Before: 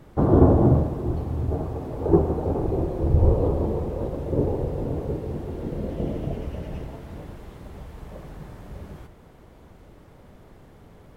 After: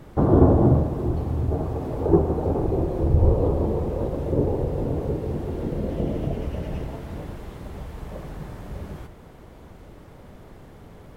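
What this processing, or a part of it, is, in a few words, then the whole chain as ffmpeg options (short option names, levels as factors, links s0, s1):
parallel compression: -filter_complex "[0:a]asplit=2[s0][s1];[s1]acompressor=threshold=0.0355:ratio=6,volume=0.794[s2];[s0][s2]amix=inputs=2:normalize=0,volume=0.891"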